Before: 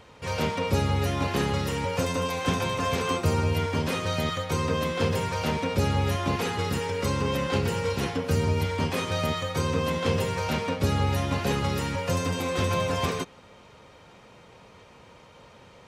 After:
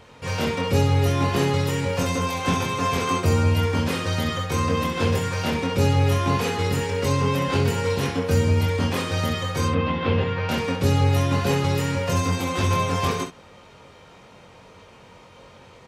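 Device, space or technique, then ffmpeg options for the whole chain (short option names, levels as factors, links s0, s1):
slapback doubling: -filter_complex "[0:a]asettb=1/sr,asplit=3[s0][s1][s2];[s0]atrim=end=9.684[s3];[s1]atrim=start=9.68:end=10.49,asetpts=PTS-STARTPTS,afade=t=in:d=0.004:c=qsin,afade=t=out:st=0.806:d=0.004:c=qsin,lowpass=f=3500:w=0.5412,lowpass=f=3500:w=1.3066[s4];[s2]atrim=start=10.486[s5];[s3][s4]acrossfade=d=0.004:c1=hsin:c2=qsin[s6];[s6][s5]acrossfade=d=0.004:c1=qsin:c2=hsin,asplit=3[s7][s8][s9];[s8]adelay=22,volume=0.668[s10];[s9]adelay=65,volume=0.355[s11];[s7][s10][s11]amix=inputs=3:normalize=0,volume=1.19"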